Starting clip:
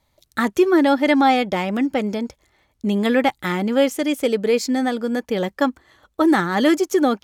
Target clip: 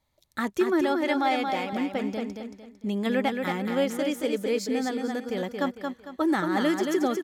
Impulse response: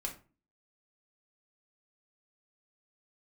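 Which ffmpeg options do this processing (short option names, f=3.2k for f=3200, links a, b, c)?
-filter_complex "[0:a]asettb=1/sr,asplit=3[a][b][c];[a]atrim=end=0.814[d];[b]atrim=start=0.81:end=1.73,asetpts=PTS-STARTPTS,afade=t=in:d=0.004:c=qsin,afade=t=out:st=0.916:d=0.004:c=qsin,highpass=f=320:p=1[e];[c]atrim=start=1.726[f];[d][e]acrossfade=d=0.004:c1=hsin:c2=qsin[g];[g][f]acrossfade=d=0.004:c1=qsin:c2=hsin,asplit=2[h][i];[i]aecho=0:1:226|452|678|904:0.562|0.191|0.065|0.0221[j];[h][j]amix=inputs=2:normalize=0,volume=-8.5dB"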